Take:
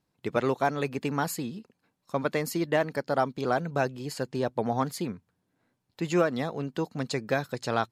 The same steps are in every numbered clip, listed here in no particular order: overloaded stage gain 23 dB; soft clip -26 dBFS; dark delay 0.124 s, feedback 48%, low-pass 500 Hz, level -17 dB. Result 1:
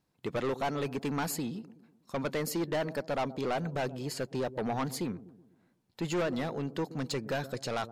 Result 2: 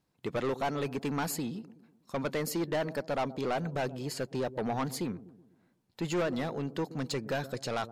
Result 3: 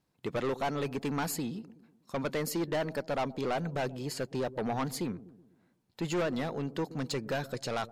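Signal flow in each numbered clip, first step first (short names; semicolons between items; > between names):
dark delay > overloaded stage > soft clip; dark delay > soft clip > overloaded stage; overloaded stage > dark delay > soft clip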